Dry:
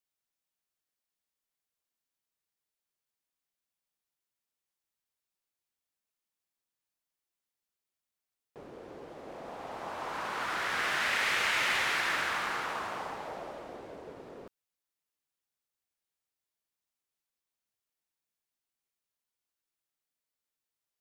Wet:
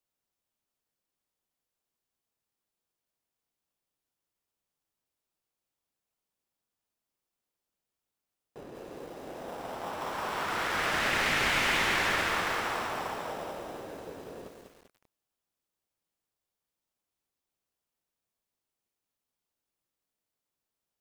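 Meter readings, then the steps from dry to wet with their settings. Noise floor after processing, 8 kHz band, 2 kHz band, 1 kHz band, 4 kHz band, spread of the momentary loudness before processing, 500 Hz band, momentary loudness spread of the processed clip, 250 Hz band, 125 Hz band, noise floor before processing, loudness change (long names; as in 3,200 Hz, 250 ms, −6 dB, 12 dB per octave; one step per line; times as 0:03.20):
below −85 dBFS, +2.5 dB, +1.5 dB, +2.5 dB, +2.0 dB, 20 LU, +4.5 dB, 19 LU, +7.0 dB, +9.0 dB, below −85 dBFS, +1.5 dB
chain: in parallel at −8 dB: decimation without filtering 20×
on the sum: feedback echo at a low word length 196 ms, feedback 55%, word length 9 bits, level −5 dB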